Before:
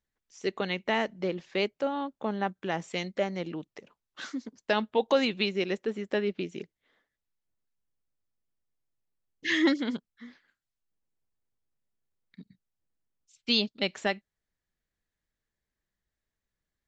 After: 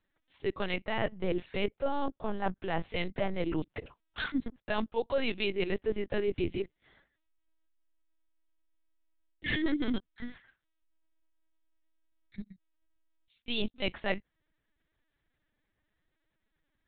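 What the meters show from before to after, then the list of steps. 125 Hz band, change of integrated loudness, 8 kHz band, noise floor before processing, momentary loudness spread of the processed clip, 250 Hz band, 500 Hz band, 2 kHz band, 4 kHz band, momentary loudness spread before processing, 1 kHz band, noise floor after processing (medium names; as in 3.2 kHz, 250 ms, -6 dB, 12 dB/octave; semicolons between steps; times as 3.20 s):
+0.5 dB, -4.0 dB, no reading, under -85 dBFS, 15 LU, -3.0 dB, -3.0 dB, -3.5 dB, -6.5 dB, 13 LU, -3.5 dB, -82 dBFS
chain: reverse; compression 10:1, threshold -34 dBFS, peak gain reduction 16 dB; reverse; LPC vocoder at 8 kHz pitch kept; trim +7.5 dB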